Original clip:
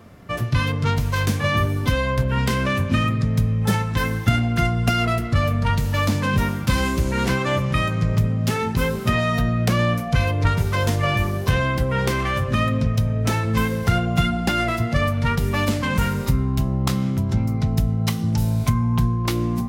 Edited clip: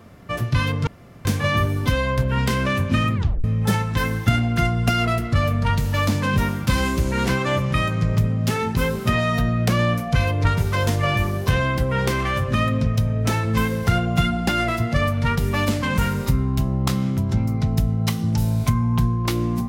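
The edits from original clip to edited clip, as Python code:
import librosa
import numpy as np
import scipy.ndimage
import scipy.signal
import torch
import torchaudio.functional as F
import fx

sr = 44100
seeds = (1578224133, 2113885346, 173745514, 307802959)

y = fx.edit(x, sr, fx.room_tone_fill(start_s=0.87, length_s=0.38),
    fx.tape_stop(start_s=3.15, length_s=0.29), tone=tone)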